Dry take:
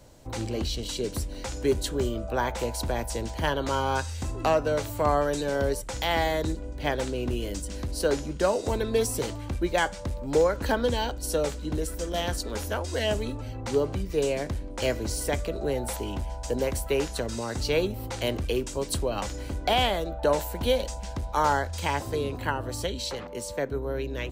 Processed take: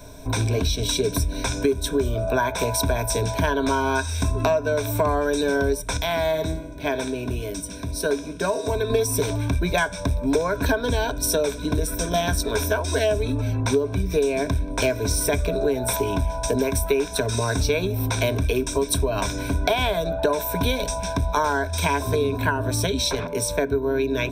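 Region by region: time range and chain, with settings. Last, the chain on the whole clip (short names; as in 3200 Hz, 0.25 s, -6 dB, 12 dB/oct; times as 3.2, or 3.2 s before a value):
5.97–8.9 HPF 51 Hz + resonator 160 Hz, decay 0.85 s
whole clip: ripple EQ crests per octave 1.6, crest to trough 15 dB; compressor, threshold -27 dBFS; gain +8.5 dB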